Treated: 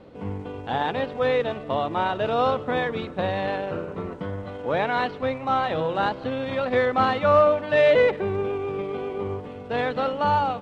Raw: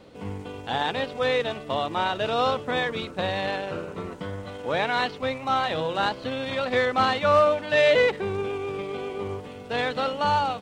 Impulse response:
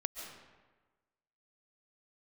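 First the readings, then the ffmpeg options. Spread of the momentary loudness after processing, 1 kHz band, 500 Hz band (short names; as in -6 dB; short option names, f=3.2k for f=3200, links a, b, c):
14 LU, +1.5 dB, +2.5 dB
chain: -filter_complex "[0:a]lowpass=f=1.4k:p=1,asplit=2[a][b];[1:a]atrim=start_sample=2205[c];[b][c]afir=irnorm=-1:irlink=0,volume=-18dB[d];[a][d]amix=inputs=2:normalize=0,volume=2dB"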